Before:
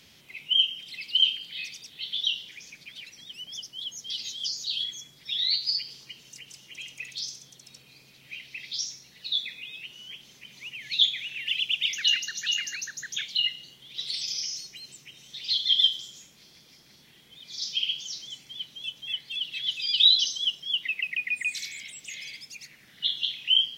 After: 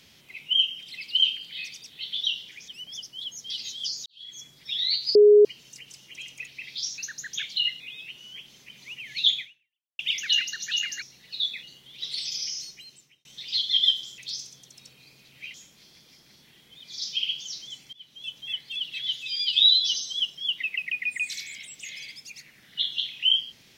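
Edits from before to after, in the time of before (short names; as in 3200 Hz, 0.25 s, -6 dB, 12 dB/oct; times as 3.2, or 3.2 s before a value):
2.68–3.28 cut
4.66–5.01 fade in quadratic
5.75–6.05 bleep 416 Hz -10.5 dBFS
7.07–8.43 move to 16.14
8.94–9.55 swap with 12.77–13.59
11.15–11.74 fade out exponential
14.63–15.21 fade out
18.53–18.94 fade in, from -19.5 dB
19.67–20.37 stretch 1.5×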